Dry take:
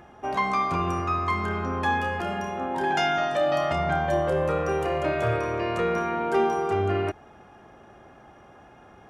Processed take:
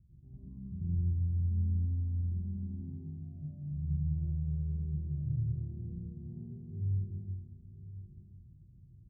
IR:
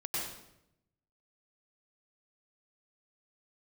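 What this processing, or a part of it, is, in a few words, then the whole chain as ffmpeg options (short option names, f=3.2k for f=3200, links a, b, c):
club heard from the street: -filter_complex "[0:a]alimiter=limit=-20dB:level=0:latency=1,lowpass=f=140:w=0.5412,lowpass=f=140:w=1.3066[a];[1:a]atrim=start_sample=2205[b];[a][b]afir=irnorm=-1:irlink=0,aecho=1:1:1024:0.188"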